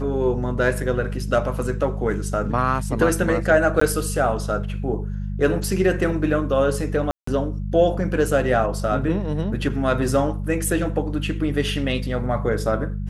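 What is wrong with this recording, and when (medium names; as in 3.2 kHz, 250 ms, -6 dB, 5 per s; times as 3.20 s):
hum 50 Hz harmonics 4 -27 dBFS
3.80–3.81 s: dropout 14 ms
7.11–7.27 s: dropout 164 ms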